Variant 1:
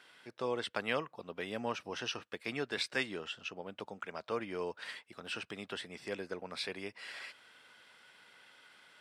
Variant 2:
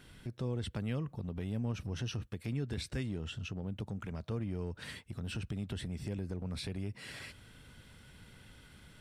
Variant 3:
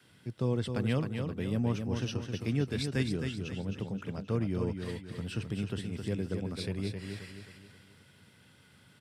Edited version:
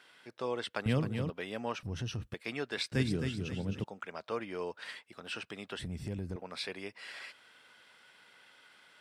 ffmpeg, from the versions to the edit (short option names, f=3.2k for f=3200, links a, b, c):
-filter_complex "[2:a]asplit=2[a][b];[1:a]asplit=2[c][d];[0:a]asplit=5[e][f][g][h][i];[e]atrim=end=0.862[j];[a]atrim=start=0.858:end=1.302[k];[f]atrim=start=1.298:end=1.832[l];[c]atrim=start=1.828:end=2.342[m];[g]atrim=start=2.338:end=2.922[n];[b]atrim=start=2.918:end=3.842[o];[h]atrim=start=3.838:end=5.792[p];[d]atrim=start=5.788:end=6.362[q];[i]atrim=start=6.358[r];[j][k]acrossfade=d=0.004:c1=hsin:c2=hsin[s];[s][l]acrossfade=d=0.004:c1=hsin:c2=hsin[t];[t][m]acrossfade=d=0.004:c1=hsin:c2=hsin[u];[u][n]acrossfade=d=0.004:c1=hsin:c2=hsin[v];[v][o]acrossfade=d=0.004:c1=hsin:c2=hsin[w];[w][p]acrossfade=d=0.004:c1=hsin:c2=hsin[x];[x][q]acrossfade=d=0.004:c1=hsin:c2=hsin[y];[y][r]acrossfade=d=0.004:c1=hsin:c2=hsin"